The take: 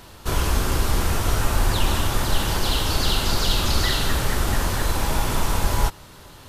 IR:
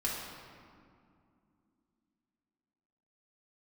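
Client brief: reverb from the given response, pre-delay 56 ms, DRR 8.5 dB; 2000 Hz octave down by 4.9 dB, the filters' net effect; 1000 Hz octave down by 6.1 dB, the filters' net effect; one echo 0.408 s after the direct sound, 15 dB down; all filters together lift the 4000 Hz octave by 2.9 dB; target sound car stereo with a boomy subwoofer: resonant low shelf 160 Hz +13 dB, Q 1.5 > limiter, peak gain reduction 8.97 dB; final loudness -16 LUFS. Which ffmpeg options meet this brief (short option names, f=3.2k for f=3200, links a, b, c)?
-filter_complex "[0:a]equalizer=f=1k:t=o:g=-6,equalizer=f=2k:t=o:g=-6,equalizer=f=4k:t=o:g=5.5,aecho=1:1:408:0.178,asplit=2[a][b];[1:a]atrim=start_sample=2205,adelay=56[c];[b][c]afir=irnorm=-1:irlink=0,volume=-13.5dB[d];[a][d]amix=inputs=2:normalize=0,lowshelf=f=160:t=q:w=1.5:g=13,alimiter=limit=-4dB:level=0:latency=1"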